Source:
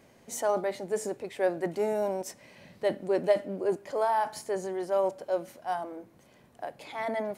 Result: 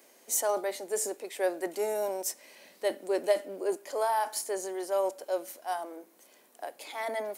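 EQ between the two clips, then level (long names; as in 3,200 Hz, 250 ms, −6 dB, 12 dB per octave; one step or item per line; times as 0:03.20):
high-pass filter 290 Hz 24 dB per octave
high-shelf EQ 4,600 Hz +11.5 dB
high-shelf EQ 10,000 Hz +6 dB
−2.0 dB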